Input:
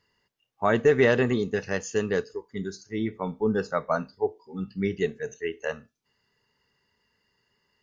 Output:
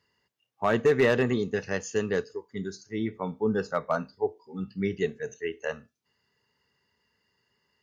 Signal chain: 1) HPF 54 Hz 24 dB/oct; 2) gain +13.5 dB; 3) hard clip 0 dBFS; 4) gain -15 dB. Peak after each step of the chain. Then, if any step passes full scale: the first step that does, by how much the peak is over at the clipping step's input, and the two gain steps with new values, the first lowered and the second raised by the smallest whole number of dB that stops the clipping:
-9.0, +4.5, 0.0, -15.0 dBFS; step 2, 4.5 dB; step 2 +8.5 dB, step 4 -10 dB

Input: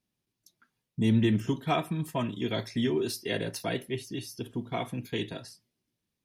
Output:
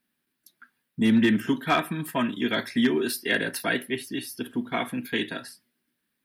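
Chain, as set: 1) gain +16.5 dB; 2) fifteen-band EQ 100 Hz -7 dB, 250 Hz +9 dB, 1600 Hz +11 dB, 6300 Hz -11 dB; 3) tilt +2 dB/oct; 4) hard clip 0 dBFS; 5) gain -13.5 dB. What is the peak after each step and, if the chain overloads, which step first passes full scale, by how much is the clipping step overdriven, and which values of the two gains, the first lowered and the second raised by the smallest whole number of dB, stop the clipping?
+1.0, +6.0, +5.0, 0.0, -13.5 dBFS; step 1, 5.0 dB; step 1 +11.5 dB, step 5 -8.5 dB

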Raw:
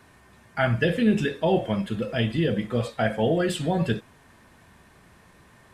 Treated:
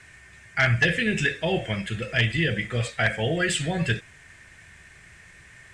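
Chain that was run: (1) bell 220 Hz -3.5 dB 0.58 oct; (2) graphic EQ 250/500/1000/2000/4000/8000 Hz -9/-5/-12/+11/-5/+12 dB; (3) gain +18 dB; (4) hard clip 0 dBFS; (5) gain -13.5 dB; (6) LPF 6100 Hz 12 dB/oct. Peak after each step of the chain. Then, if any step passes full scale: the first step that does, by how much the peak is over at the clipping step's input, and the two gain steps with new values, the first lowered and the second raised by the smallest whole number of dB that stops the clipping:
-9.0, -9.0, +9.0, 0.0, -13.5, -13.0 dBFS; step 3, 9.0 dB; step 3 +9 dB, step 5 -4.5 dB

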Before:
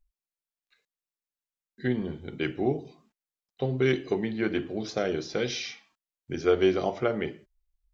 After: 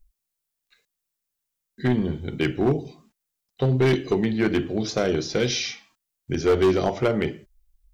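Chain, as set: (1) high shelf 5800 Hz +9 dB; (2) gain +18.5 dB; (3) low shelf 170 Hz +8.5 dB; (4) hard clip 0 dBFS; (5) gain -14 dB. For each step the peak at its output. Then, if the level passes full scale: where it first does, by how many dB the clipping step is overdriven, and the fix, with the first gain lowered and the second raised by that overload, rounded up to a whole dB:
-11.0, +7.5, +10.0, 0.0, -14.0 dBFS; step 2, 10.0 dB; step 2 +8.5 dB, step 5 -4 dB

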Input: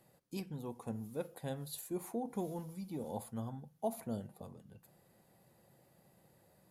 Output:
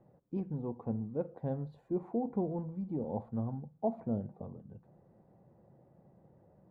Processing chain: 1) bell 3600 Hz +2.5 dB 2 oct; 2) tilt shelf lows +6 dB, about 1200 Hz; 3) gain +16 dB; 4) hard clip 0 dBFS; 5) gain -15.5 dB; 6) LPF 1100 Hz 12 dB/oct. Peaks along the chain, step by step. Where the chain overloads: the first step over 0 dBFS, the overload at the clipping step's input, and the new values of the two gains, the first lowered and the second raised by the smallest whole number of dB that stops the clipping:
-24.5, -21.0, -5.0, -5.0, -20.5, -21.0 dBFS; no overload

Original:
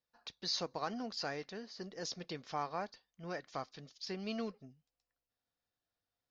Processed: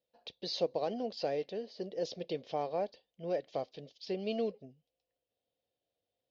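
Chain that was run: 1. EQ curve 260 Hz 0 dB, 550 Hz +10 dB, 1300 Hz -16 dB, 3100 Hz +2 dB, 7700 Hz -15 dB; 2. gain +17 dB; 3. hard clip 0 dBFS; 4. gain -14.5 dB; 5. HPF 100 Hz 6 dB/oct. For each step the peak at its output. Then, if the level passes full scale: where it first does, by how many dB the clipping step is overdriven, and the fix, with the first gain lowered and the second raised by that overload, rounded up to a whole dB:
-22.5, -5.5, -5.5, -20.0, -20.5 dBFS; no overload

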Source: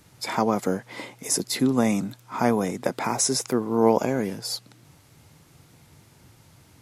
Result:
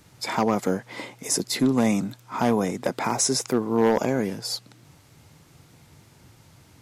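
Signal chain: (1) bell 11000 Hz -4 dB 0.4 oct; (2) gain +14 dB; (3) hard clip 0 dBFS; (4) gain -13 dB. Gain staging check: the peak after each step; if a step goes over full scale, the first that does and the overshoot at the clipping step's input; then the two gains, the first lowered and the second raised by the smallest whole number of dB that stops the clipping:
-6.5, +7.5, 0.0, -13.0 dBFS; step 2, 7.5 dB; step 2 +6 dB, step 4 -5 dB

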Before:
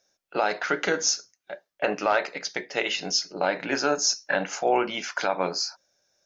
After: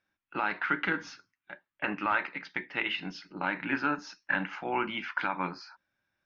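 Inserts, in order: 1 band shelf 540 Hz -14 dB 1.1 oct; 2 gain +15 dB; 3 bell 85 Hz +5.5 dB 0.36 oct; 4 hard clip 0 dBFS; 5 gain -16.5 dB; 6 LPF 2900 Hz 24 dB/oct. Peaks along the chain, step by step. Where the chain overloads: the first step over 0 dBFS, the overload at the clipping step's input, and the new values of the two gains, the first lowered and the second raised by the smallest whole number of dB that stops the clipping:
-10.5, +4.5, +4.5, 0.0, -16.5, -15.5 dBFS; step 2, 4.5 dB; step 2 +10 dB, step 5 -11.5 dB

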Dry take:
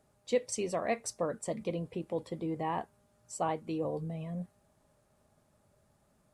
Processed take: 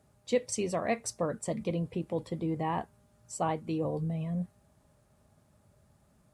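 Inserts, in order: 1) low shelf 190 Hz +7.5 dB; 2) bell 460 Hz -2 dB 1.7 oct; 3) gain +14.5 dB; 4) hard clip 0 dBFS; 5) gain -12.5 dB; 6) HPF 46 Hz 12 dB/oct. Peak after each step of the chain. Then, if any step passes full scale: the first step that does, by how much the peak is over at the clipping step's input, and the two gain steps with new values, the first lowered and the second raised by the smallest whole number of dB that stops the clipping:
-17.0, -18.5, -4.0, -4.0, -16.5, -16.5 dBFS; no overload

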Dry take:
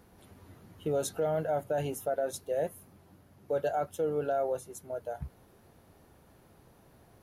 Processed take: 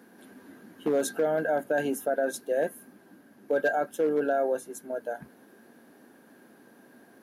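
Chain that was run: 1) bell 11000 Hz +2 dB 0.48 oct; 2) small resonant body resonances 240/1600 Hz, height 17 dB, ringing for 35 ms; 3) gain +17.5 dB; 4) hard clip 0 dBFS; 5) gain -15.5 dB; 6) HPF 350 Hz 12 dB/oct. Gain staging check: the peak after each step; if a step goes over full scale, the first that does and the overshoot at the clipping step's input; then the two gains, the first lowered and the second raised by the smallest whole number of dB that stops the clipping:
-21.5, -12.5, +5.0, 0.0, -15.5, -15.0 dBFS; step 3, 5.0 dB; step 3 +12.5 dB, step 5 -10.5 dB

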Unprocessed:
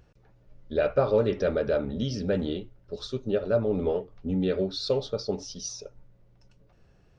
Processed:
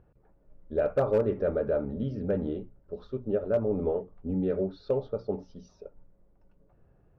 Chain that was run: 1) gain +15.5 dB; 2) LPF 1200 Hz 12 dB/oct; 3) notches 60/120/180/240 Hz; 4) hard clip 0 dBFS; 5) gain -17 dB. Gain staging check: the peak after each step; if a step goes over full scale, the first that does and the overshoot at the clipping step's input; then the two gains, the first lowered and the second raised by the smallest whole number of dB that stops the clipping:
+6.0, +5.5, +5.5, 0.0, -17.0 dBFS; step 1, 5.5 dB; step 1 +9.5 dB, step 5 -11 dB

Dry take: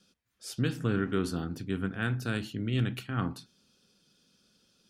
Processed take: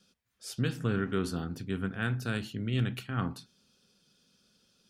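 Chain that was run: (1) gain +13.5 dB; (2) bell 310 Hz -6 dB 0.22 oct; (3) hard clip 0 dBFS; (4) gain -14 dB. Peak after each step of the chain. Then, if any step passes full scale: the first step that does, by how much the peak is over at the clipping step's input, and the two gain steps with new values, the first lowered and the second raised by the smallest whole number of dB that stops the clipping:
-2.5, -3.0, -3.0, -17.0 dBFS; no overload

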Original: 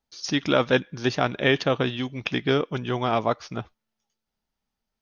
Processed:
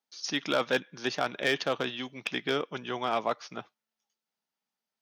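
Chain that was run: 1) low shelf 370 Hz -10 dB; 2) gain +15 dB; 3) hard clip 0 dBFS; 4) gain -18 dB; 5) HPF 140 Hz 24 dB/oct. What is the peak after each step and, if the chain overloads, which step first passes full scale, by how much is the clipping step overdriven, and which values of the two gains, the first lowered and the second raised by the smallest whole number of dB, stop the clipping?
-6.0, +9.0, 0.0, -18.0, -13.5 dBFS; step 2, 9.0 dB; step 2 +6 dB, step 4 -9 dB

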